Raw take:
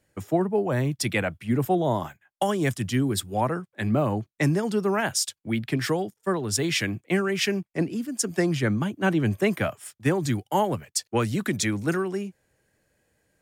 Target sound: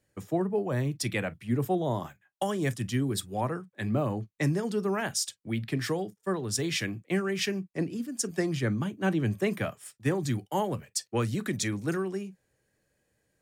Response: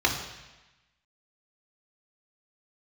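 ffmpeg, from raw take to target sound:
-filter_complex "[0:a]asplit=2[link_01][link_02];[1:a]atrim=start_sample=2205,atrim=end_sample=3969,asetrate=74970,aresample=44100[link_03];[link_02][link_03]afir=irnorm=-1:irlink=0,volume=-21dB[link_04];[link_01][link_04]amix=inputs=2:normalize=0,volume=-5.5dB"

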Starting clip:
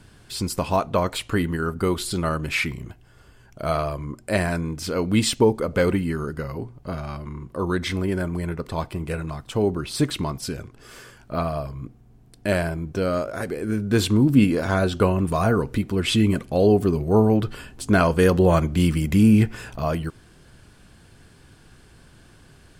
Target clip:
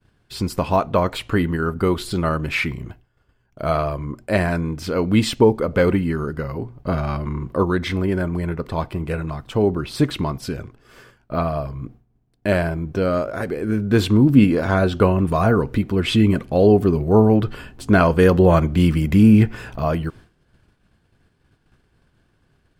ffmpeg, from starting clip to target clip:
ffmpeg -i in.wav -filter_complex "[0:a]equalizer=frequency=8800:width=0.55:gain=-9.5,agate=range=-33dB:threshold=-40dB:ratio=3:detection=peak,asplit=3[link_01][link_02][link_03];[link_01]afade=type=out:start_time=6.78:duration=0.02[link_04];[link_02]acontrast=25,afade=type=in:start_time=6.78:duration=0.02,afade=type=out:start_time=7.62:duration=0.02[link_05];[link_03]afade=type=in:start_time=7.62:duration=0.02[link_06];[link_04][link_05][link_06]amix=inputs=3:normalize=0,volume=3.5dB" out.wav

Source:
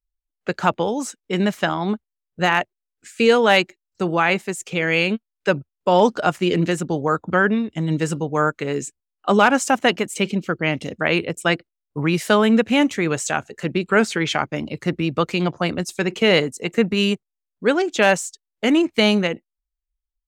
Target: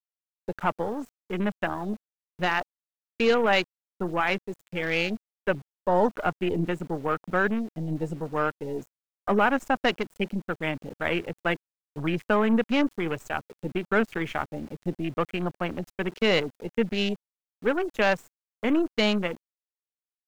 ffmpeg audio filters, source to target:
ffmpeg -i in.wav -af "aeval=exprs='0.631*(cos(1*acos(clip(val(0)/0.631,-1,1)))-cos(1*PI/2))+0.0398*(cos(5*acos(clip(val(0)/0.631,-1,1)))-cos(5*PI/2))+0.0141*(cos(6*acos(clip(val(0)/0.631,-1,1)))-cos(6*PI/2))+0.0316*(cos(7*acos(clip(val(0)/0.631,-1,1)))-cos(7*PI/2))+0.0562*(cos(8*acos(clip(val(0)/0.631,-1,1)))-cos(8*PI/2))':channel_layout=same,afwtdn=0.0447,aeval=exprs='val(0)*gte(abs(val(0)),0.0112)':channel_layout=same,volume=-7.5dB" out.wav

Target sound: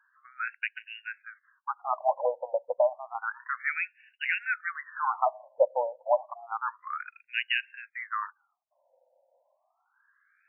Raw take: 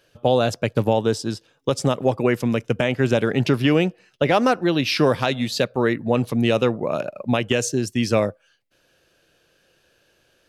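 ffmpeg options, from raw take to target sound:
ffmpeg -i in.wav -af "lowshelf=frequency=270:width_type=q:width=3:gain=-7.5,afftfilt=real='re*between(b*sr/1024,680*pow(2100/680,0.5+0.5*sin(2*PI*0.3*pts/sr))/1.41,680*pow(2100/680,0.5+0.5*sin(2*PI*0.3*pts/sr))*1.41)':imag='im*between(b*sr/1024,680*pow(2100/680,0.5+0.5*sin(2*PI*0.3*pts/sr))/1.41,680*pow(2100/680,0.5+0.5*sin(2*PI*0.3*pts/sr))*1.41)':win_size=1024:overlap=0.75" out.wav

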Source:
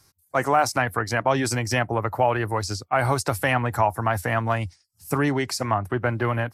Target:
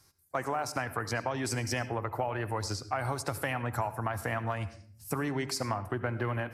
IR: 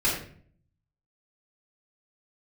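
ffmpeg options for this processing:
-filter_complex "[0:a]acompressor=threshold=-24dB:ratio=6,asplit=2[link_01][link_02];[1:a]atrim=start_sample=2205,adelay=66[link_03];[link_02][link_03]afir=irnorm=-1:irlink=0,volume=-25dB[link_04];[link_01][link_04]amix=inputs=2:normalize=0,volume=-4.5dB"

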